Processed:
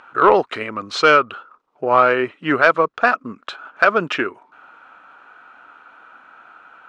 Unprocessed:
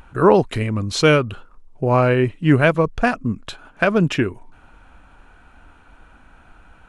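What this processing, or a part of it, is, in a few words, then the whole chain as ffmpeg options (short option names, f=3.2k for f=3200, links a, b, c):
intercom: -af "highpass=430,lowpass=4.2k,equalizer=f=1.3k:t=o:w=0.42:g=10,asoftclip=type=tanh:threshold=-3dB,volume=2.5dB"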